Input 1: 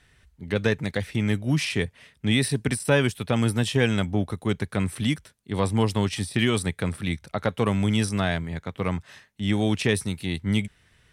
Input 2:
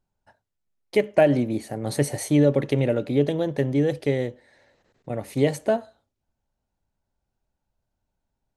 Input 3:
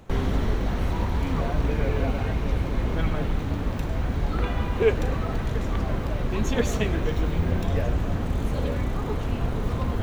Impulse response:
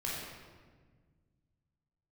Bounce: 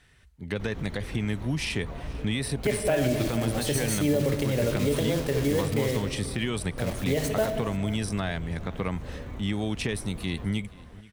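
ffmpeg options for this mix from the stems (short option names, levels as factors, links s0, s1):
-filter_complex "[0:a]acompressor=threshold=0.0631:ratio=6,volume=0.944,asplit=3[s0][s1][s2];[s1]volume=0.0794[s3];[1:a]acrusher=bits=5:mix=0:aa=0.000001,adynamicequalizer=threshold=0.0158:dfrequency=1900:dqfactor=0.7:tfrequency=1900:tqfactor=0.7:attack=5:release=100:ratio=0.375:range=2.5:mode=boostabove:tftype=highshelf,adelay=1700,volume=0.562,asplit=3[s4][s5][s6];[s5]volume=0.398[s7];[s6]volume=0.112[s8];[2:a]adelay=500,volume=0.237,asplit=2[s9][s10];[s10]volume=0.316[s11];[s2]apad=whole_len=464306[s12];[s9][s12]sidechaincompress=threshold=0.0224:ratio=8:attack=22:release=101[s13];[3:a]atrim=start_sample=2205[s14];[s7][s14]afir=irnorm=-1:irlink=0[s15];[s3][s8][s11]amix=inputs=3:normalize=0,aecho=0:1:481:1[s16];[s0][s4][s13][s15][s16]amix=inputs=5:normalize=0,alimiter=limit=0.168:level=0:latency=1:release=56"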